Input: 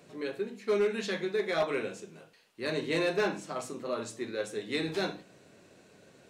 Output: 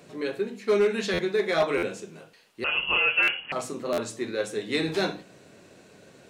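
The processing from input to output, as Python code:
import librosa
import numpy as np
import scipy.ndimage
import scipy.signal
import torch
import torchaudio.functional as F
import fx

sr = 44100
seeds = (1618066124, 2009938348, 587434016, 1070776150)

y = fx.freq_invert(x, sr, carrier_hz=3100, at=(2.64, 3.52))
y = fx.buffer_glitch(y, sr, at_s=(1.13, 1.77, 3.22, 3.92), block=512, repeats=4)
y = y * 10.0 ** (5.5 / 20.0)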